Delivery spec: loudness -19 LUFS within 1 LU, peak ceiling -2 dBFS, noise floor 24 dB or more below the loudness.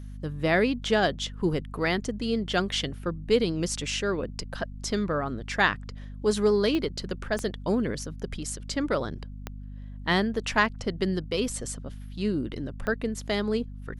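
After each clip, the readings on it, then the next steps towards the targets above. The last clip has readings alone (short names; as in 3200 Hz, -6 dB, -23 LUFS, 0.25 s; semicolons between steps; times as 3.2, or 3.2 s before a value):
clicks 4; hum 50 Hz; harmonics up to 250 Hz; hum level -37 dBFS; loudness -28.0 LUFS; peak -7.5 dBFS; loudness target -19.0 LUFS
-> de-click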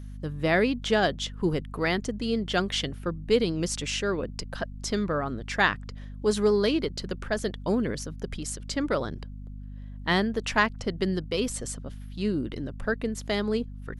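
clicks 0; hum 50 Hz; harmonics up to 250 Hz; hum level -37 dBFS
-> de-hum 50 Hz, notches 5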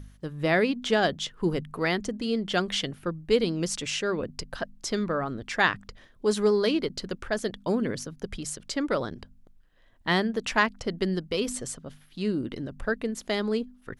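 hum none; loudness -28.5 LUFS; peak -7.5 dBFS; loudness target -19.0 LUFS
-> gain +9.5 dB; limiter -2 dBFS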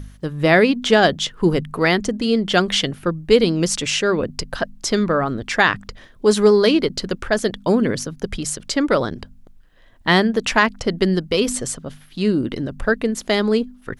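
loudness -19.0 LUFS; peak -2.0 dBFS; noise floor -48 dBFS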